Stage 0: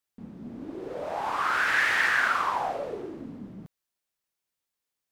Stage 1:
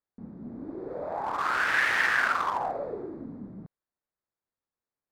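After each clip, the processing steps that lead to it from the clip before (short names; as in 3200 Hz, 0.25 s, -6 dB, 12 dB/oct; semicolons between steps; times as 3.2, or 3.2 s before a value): Wiener smoothing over 15 samples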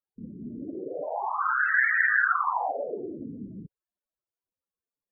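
high shelf 3100 Hz +7.5 dB; loudest bins only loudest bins 16; gain +2 dB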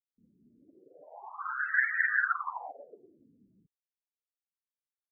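upward expander 2.5:1, over -36 dBFS; gain -2 dB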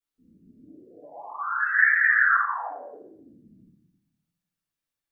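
reverb RT60 0.70 s, pre-delay 3 ms, DRR -9.5 dB; gain -4 dB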